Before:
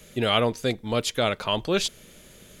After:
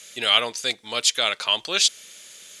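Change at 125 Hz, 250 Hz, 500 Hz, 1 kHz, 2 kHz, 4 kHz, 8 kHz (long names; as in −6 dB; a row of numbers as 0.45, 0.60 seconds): below −15 dB, −12.5 dB, −6.5 dB, −0.5 dB, +5.0 dB, +8.5 dB, +11.0 dB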